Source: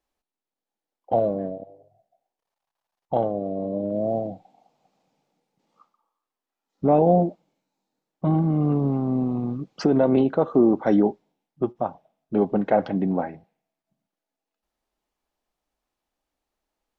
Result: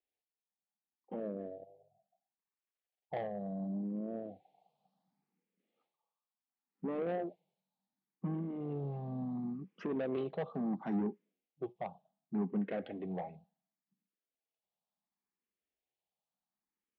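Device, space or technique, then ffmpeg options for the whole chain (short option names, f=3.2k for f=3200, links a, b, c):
barber-pole phaser into a guitar amplifier: -filter_complex "[0:a]asplit=2[a][b];[b]afreqshift=0.7[c];[a][c]amix=inputs=2:normalize=1,asoftclip=type=tanh:threshold=-20dB,highpass=100,equalizer=f=110:t=q:w=4:g=-7,equalizer=f=190:t=q:w=4:g=6,equalizer=f=300:t=q:w=4:g=-6,equalizer=f=570:t=q:w=4:g=-4,equalizer=f=960:t=q:w=4:g=-4,equalizer=f=1.4k:t=q:w=4:g=-7,lowpass=f=4.1k:w=0.5412,lowpass=f=4.1k:w=1.3066,volume=-8.5dB"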